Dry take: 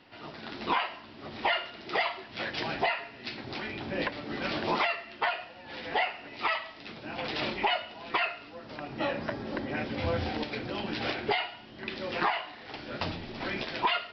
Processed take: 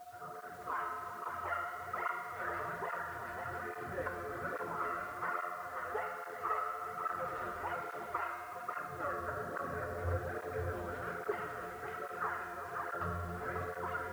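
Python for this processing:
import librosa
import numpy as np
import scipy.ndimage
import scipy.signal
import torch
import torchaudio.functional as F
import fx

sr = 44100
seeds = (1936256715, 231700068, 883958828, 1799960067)

y = fx.curve_eq(x, sr, hz=(130.0, 270.0, 450.0, 810.0, 1300.0, 2400.0, 4000.0, 8700.0), db=(0, -13, 3, -9, 10, -17, -28, -20))
y = fx.rider(y, sr, range_db=3, speed_s=0.5)
y = fx.comb_fb(y, sr, f0_hz=87.0, decay_s=2.0, harmonics='all', damping=0.0, mix_pct=90)
y = y + 10.0 ** (-12.5 / 20.0) * np.pad(y, (int(372 * sr / 1000.0), 0))[:len(y)]
y = fx.quant_dither(y, sr, seeds[0], bits=12, dither='triangular')
y = y + 10.0 ** (-4.0 / 20.0) * np.pad(y, (int(542 * sr / 1000.0), 0))[:len(y)]
y = y + 10.0 ** (-56.0 / 20.0) * np.sin(2.0 * np.pi * 710.0 * np.arange(len(y)) / sr)
y = fx.flanger_cancel(y, sr, hz=1.2, depth_ms=8.0)
y = F.gain(torch.from_numpy(y), 10.5).numpy()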